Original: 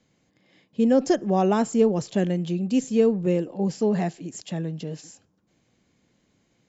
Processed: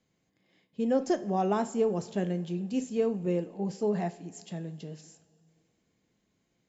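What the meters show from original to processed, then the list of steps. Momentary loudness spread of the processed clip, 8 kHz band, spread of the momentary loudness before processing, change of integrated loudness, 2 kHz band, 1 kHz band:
14 LU, n/a, 13 LU, -7.0 dB, -7.0 dB, -4.5 dB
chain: dynamic EQ 900 Hz, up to +4 dB, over -31 dBFS, Q 0.73; two-slope reverb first 0.36 s, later 2.7 s, from -18 dB, DRR 9 dB; gain -9 dB

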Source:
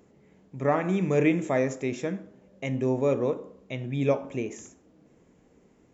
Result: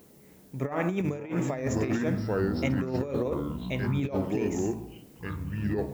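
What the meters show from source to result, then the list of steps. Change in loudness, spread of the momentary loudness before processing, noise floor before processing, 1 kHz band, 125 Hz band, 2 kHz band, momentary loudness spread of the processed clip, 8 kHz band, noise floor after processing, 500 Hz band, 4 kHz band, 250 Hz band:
-2.0 dB, 13 LU, -61 dBFS, -3.5 dB, +1.5 dB, -1.5 dB, 9 LU, n/a, -55 dBFS, -3.5 dB, +1.0 dB, 0.0 dB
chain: echoes that change speed 0.286 s, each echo -5 st, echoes 3, each echo -6 dB; added noise blue -64 dBFS; negative-ratio compressor -27 dBFS, ratio -0.5

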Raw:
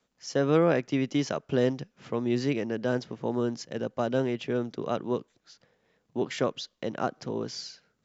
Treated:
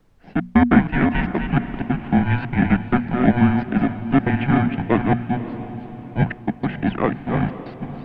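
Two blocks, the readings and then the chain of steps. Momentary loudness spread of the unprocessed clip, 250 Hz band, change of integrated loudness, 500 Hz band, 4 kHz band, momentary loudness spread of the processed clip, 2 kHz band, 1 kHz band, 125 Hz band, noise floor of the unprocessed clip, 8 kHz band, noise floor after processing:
10 LU, +12.0 dB, +9.0 dB, +0.5 dB, -1.0 dB, 11 LU, +12.5 dB, +11.5 dB, +13.0 dB, -76 dBFS, n/a, -41 dBFS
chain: reverse delay 0.218 s, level -6 dB; in parallel at -5.5 dB: sample-and-hold 30×; on the sum: AGC; mistuned SSB -250 Hz 330–3100 Hz; step gate "x.xxx..x.xxxxxx" 190 bpm -60 dB; small resonant body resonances 210/710 Hz, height 9 dB, ringing for 25 ms; on a send: diffused feedback echo 0.553 s, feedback 45%, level -12 dB; on the sum: added noise brown -52 dBFS; notches 60/120/180/240 Hz; dynamic EQ 1700 Hz, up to +7 dB, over -39 dBFS, Q 1.4; gain -1.5 dB

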